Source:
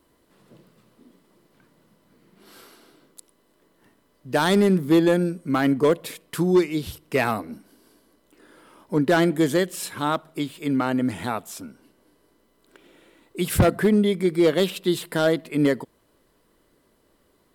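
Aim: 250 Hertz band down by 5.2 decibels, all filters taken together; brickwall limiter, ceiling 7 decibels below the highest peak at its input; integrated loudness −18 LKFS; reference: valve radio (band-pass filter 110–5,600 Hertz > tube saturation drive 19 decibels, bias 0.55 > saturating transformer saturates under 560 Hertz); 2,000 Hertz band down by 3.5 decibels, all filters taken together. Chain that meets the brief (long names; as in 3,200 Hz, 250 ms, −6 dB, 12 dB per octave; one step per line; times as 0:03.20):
parametric band 250 Hz −7.5 dB
parametric band 2,000 Hz −4.5 dB
brickwall limiter −18 dBFS
band-pass filter 110–5,600 Hz
tube saturation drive 19 dB, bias 0.55
saturating transformer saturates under 560 Hz
level +16.5 dB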